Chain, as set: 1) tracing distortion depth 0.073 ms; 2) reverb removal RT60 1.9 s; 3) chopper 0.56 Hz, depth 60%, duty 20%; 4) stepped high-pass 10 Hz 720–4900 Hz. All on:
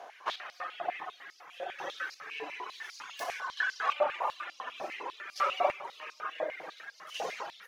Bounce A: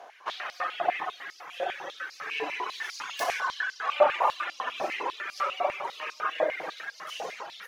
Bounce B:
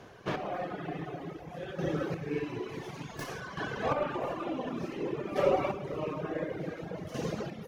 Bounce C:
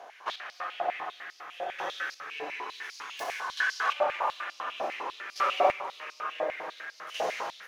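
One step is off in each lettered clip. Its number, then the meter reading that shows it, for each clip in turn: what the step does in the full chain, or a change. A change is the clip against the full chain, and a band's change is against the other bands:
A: 3, momentary loudness spread change -1 LU; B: 4, 250 Hz band +24.0 dB; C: 2, momentary loudness spread change -1 LU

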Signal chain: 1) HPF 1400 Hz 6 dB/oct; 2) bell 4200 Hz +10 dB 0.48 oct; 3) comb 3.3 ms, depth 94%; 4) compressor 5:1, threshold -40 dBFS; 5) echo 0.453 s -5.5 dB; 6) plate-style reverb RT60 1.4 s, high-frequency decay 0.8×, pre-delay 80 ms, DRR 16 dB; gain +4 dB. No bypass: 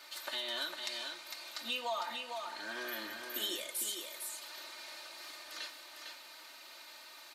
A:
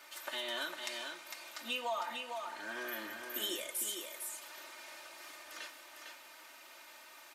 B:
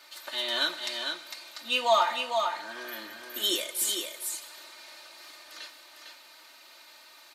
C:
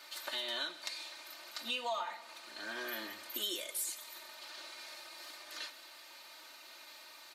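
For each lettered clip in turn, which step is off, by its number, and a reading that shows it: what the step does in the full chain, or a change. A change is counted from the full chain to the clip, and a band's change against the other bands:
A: 2, 4 kHz band -3.0 dB; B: 4, mean gain reduction 2.0 dB; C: 5, momentary loudness spread change +1 LU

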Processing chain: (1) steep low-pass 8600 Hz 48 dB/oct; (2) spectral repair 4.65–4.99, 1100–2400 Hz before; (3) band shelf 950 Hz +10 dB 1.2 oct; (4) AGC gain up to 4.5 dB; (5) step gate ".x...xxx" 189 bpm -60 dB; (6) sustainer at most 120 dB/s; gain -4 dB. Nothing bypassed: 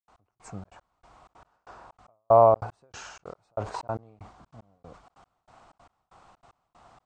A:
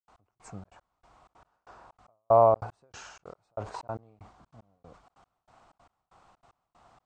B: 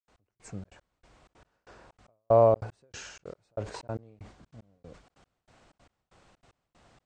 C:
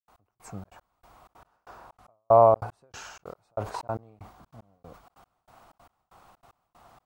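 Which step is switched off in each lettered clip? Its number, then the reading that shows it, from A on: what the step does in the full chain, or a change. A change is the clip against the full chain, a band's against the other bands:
4, momentary loudness spread change -2 LU; 3, 1 kHz band -7.5 dB; 1, momentary loudness spread change +2 LU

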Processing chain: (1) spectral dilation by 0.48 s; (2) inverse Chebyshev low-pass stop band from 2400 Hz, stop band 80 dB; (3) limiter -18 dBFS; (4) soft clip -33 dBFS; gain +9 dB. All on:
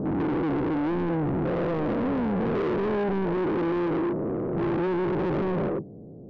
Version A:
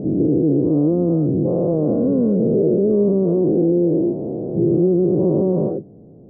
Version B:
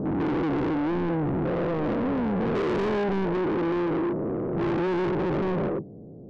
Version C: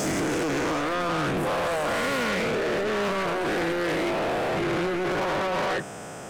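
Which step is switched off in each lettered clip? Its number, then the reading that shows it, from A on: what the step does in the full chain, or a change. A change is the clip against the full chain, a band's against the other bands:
4, distortion -7 dB; 3, 4 kHz band +3.0 dB; 2, 4 kHz band +14.5 dB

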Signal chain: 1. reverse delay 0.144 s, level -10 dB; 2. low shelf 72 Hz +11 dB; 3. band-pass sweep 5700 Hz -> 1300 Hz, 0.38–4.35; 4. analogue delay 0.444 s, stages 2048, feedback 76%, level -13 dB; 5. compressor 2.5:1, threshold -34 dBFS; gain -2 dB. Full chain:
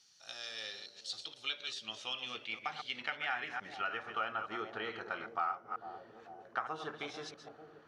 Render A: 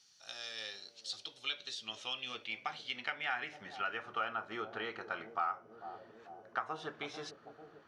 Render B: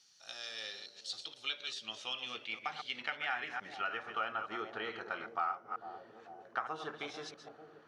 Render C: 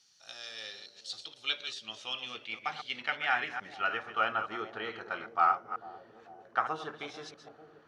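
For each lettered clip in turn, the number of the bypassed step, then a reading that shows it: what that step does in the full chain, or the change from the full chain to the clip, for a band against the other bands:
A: 1, momentary loudness spread change +1 LU; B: 2, 125 Hz band -2.5 dB; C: 5, momentary loudness spread change +7 LU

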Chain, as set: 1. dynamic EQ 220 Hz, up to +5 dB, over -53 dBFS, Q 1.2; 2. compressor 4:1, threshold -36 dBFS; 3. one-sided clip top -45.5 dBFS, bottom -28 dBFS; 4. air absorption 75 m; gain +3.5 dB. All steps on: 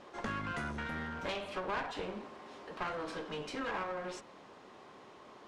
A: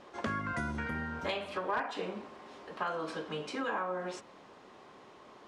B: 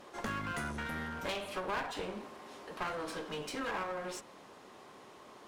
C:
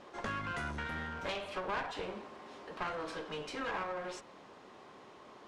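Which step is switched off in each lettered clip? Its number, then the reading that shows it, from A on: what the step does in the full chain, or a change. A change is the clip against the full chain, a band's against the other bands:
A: 3, distortion -8 dB; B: 4, 8 kHz band +6.5 dB; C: 1, 250 Hz band -3.0 dB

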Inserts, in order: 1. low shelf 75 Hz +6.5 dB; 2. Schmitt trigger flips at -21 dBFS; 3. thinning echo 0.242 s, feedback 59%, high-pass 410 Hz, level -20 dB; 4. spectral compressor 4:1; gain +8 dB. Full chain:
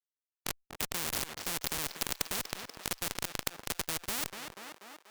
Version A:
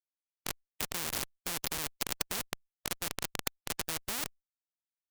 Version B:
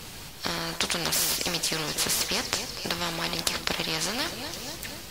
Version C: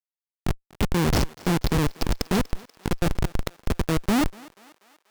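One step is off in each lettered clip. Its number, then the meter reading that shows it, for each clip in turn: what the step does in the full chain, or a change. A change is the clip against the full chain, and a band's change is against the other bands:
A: 3, momentary loudness spread change -2 LU; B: 2, crest factor change +2.0 dB; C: 4, 125 Hz band +14.0 dB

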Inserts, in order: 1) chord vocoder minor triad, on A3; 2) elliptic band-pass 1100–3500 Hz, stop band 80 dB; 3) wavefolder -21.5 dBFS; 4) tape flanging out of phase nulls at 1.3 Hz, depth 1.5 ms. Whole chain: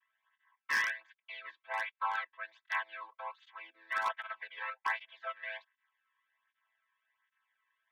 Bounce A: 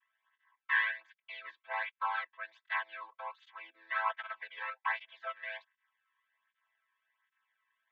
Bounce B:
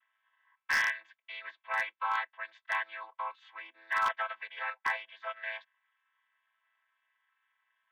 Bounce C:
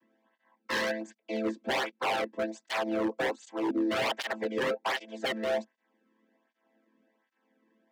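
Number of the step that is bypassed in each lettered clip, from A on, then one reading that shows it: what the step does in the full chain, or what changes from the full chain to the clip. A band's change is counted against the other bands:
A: 3, distortion -14 dB; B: 4, crest factor change -3.0 dB; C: 2, 500 Hz band +14.5 dB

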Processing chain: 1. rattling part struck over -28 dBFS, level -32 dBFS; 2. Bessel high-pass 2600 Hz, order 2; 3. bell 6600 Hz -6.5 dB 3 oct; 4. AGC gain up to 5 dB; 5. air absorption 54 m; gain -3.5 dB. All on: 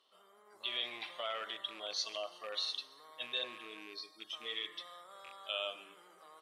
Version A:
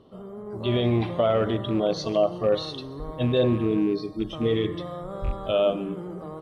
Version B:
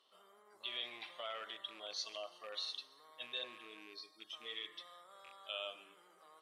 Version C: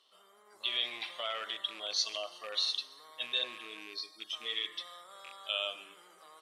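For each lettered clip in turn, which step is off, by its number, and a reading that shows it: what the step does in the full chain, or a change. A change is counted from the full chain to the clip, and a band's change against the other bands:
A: 2, 250 Hz band +24.5 dB; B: 4, momentary loudness spread change +1 LU; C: 3, 8 kHz band +5.0 dB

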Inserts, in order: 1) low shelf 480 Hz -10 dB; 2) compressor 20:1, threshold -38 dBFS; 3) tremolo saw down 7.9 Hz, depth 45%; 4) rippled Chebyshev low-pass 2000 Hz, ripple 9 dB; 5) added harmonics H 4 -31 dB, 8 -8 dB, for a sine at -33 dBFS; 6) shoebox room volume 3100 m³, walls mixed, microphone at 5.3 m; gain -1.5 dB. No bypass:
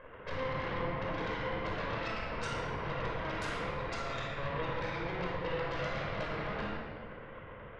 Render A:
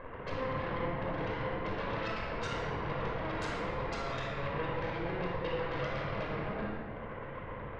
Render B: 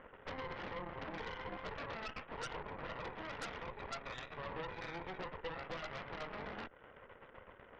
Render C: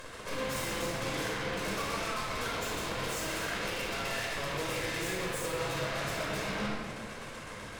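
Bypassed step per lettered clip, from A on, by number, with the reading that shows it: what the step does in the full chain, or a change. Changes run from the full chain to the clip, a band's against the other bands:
1, 8 kHz band -3.0 dB; 6, echo-to-direct 3.5 dB to none; 4, 8 kHz band +16.0 dB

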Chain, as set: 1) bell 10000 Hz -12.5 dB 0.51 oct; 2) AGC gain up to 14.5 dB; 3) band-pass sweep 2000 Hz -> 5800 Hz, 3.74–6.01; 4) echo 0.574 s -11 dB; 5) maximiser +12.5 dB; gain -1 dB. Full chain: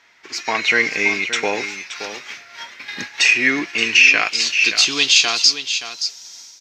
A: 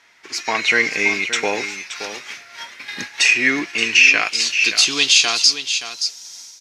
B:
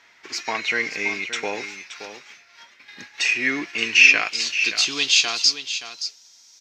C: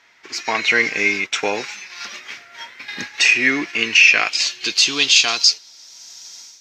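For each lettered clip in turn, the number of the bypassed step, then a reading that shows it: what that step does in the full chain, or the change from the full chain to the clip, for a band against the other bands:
1, 8 kHz band +2.0 dB; 2, crest factor change +4.0 dB; 4, momentary loudness spread change +2 LU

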